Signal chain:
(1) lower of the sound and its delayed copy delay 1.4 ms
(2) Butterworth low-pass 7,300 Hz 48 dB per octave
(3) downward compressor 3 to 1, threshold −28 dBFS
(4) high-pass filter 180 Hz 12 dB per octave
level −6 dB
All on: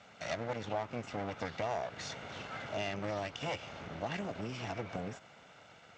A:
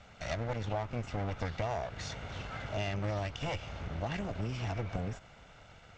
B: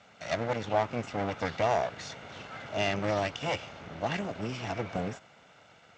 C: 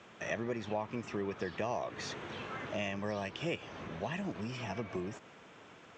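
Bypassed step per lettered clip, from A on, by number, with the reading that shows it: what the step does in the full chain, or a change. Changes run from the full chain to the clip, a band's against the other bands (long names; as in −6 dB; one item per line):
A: 4, 125 Hz band +8.5 dB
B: 3, average gain reduction 4.0 dB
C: 1, 250 Hz band +3.5 dB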